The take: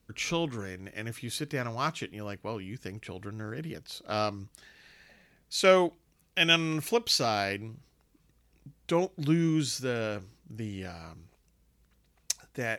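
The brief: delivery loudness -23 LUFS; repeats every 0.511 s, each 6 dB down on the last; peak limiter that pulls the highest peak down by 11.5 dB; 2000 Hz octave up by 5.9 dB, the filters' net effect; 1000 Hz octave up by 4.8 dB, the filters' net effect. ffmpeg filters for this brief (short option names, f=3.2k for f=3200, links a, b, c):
-af "equalizer=f=1k:t=o:g=4.5,equalizer=f=2k:t=o:g=6.5,alimiter=limit=-17dB:level=0:latency=1,aecho=1:1:511|1022|1533|2044|2555|3066:0.501|0.251|0.125|0.0626|0.0313|0.0157,volume=8dB"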